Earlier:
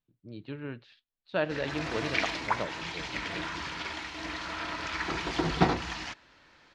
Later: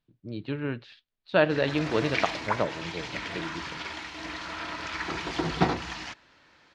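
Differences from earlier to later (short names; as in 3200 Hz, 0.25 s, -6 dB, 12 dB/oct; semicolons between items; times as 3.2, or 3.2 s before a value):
speech +7.5 dB; background: add HPF 57 Hz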